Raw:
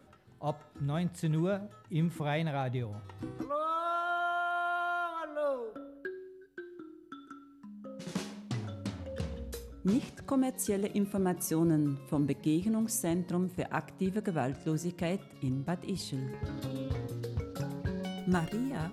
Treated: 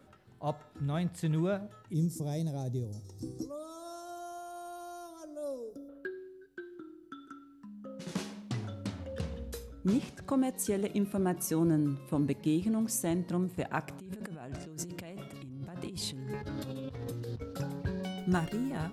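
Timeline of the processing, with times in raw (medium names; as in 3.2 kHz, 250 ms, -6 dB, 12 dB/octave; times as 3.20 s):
1.94–5.89 s: FFT filter 400 Hz 0 dB, 1.4 kHz -22 dB, 3.1 kHz -18 dB, 5.5 kHz +13 dB, 10 kHz +8 dB
13.88–17.43 s: compressor with a negative ratio -41 dBFS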